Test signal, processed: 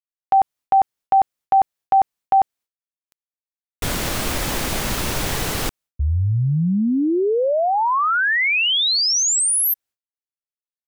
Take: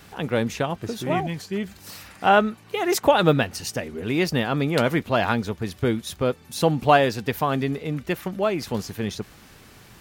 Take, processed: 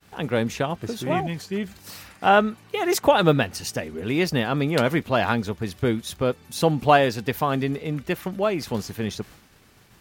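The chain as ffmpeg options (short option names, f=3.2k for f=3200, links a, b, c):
-af "agate=range=-33dB:threshold=-42dB:ratio=3:detection=peak"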